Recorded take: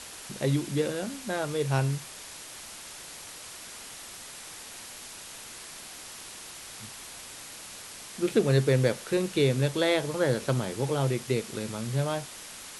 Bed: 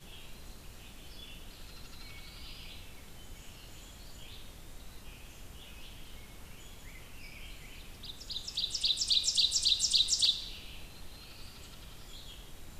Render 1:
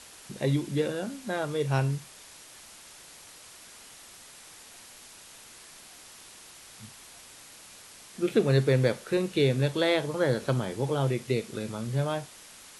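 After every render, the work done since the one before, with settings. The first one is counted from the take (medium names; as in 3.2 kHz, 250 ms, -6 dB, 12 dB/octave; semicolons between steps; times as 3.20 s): noise print and reduce 6 dB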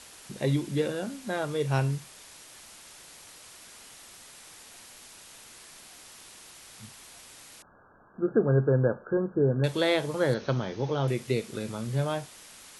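7.62–9.64 s: brick-wall FIR low-pass 1.7 kHz; 10.34–11.08 s: Chebyshev low-pass 6.4 kHz, order 8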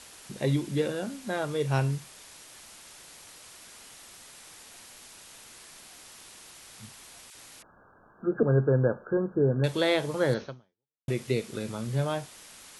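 7.30–8.43 s: phase dispersion lows, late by 48 ms, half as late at 1.1 kHz; 10.42–11.08 s: fade out exponential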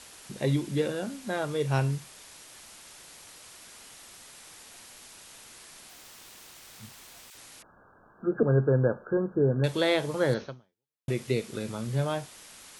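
5.89–7.38 s: careless resampling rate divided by 2×, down filtered, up hold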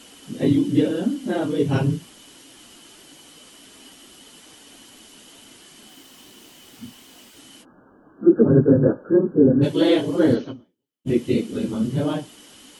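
phase randomisation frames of 50 ms; small resonant body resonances 270/3000 Hz, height 16 dB, ringing for 25 ms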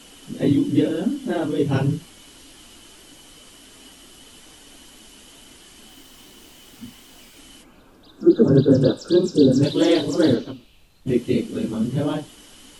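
add bed -7.5 dB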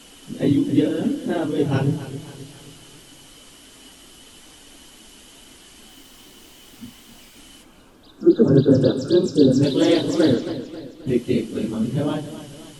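modulated delay 267 ms, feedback 48%, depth 81 cents, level -13 dB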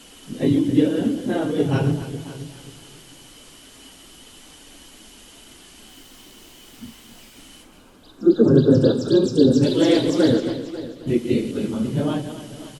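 chunks repeated in reverse 101 ms, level -10 dB; delay 546 ms -18.5 dB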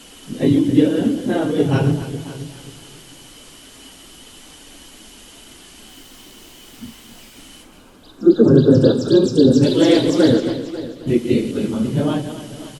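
trim +3.5 dB; peak limiter -1 dBFS, peak gain reduction 2.5 dB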